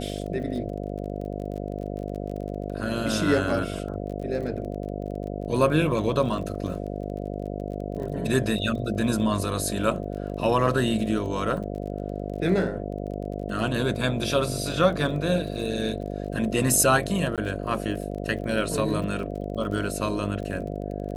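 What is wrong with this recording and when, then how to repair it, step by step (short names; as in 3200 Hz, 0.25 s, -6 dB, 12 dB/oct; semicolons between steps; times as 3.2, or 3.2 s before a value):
buzz 50 Hz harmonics 14 -32 dBFS
crackle 30/s -35 dBFS
17.36–17.38 gap 17 ms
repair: de-click; de-hum 50 Hz, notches 14; interpolate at 17.36, 17 ms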